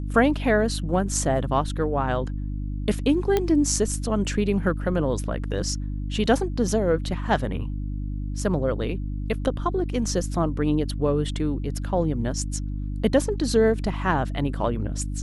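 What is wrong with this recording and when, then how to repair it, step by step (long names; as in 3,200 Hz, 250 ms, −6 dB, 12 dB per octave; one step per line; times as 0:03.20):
mains hum 50 Hz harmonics 6 −29 dBFS
0:03.37: click −9 dBFS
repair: click removal
hum removal 50 Hz, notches 6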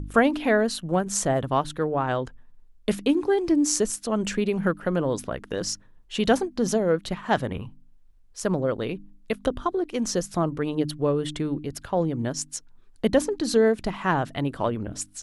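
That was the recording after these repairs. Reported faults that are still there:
none of them is left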